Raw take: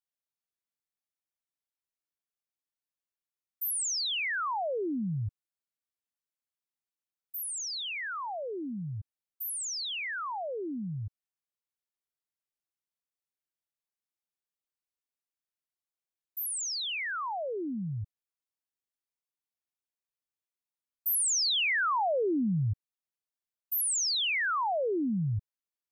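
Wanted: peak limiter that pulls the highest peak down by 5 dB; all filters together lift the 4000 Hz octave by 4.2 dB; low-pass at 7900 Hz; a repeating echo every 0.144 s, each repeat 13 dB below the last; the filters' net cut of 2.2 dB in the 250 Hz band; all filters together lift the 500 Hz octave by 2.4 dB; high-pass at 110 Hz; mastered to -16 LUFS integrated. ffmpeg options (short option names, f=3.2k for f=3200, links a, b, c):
-af "highpass=110,lowpass=7.9k,equalizer=f=250:t=o:g=-4,equalizer=f=500:t=o:g=4,equalizer=f=4k:t=o:g=5.5,alimiter=level_in=0.5dB:limit=-24dB:level=0:latency=1,volume=-0.5dB,aecho=1:1:144|288|432:0.224|0.0493|0.0108,volume=13.5dB"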